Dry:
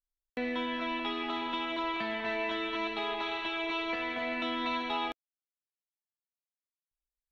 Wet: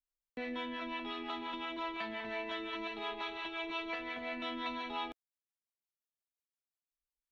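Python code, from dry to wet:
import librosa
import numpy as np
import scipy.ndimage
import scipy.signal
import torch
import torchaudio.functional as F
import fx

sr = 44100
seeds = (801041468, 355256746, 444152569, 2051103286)

y = fx.harmonic_tremolo(x, sr, hz=5.7, depth_pct=70, crossover_hz=440.0)
y = F.gain(torch.from_numpy(y), -3.0).numpy()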